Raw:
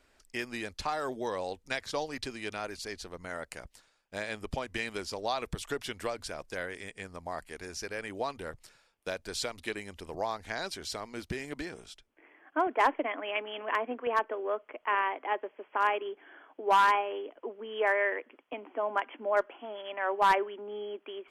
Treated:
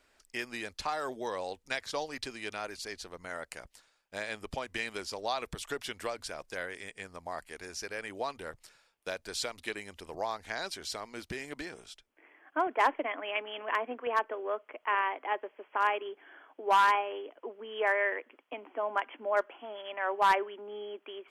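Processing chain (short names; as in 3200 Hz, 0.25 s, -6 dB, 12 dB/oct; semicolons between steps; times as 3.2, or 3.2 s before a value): low shelf 340 Hz -6.5 dB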